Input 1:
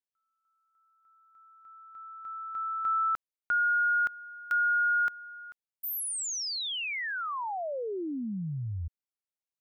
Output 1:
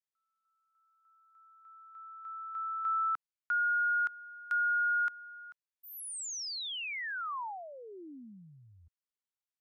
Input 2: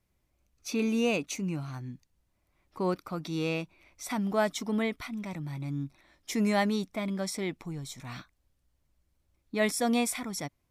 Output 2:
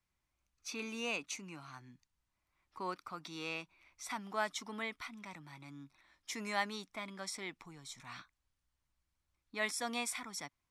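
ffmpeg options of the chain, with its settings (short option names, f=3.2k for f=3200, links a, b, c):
-filter_complex "[0:a]lowpass=9.9k,lowshelf=f=760:t=q:w=1.5:g=-7,acrossover=split=230[a][b];[a]acompressor=threshold=-55dB:ratio=6:release=126[c];[c][b]amix=inputs=2:normalize=0,volume=-5dB"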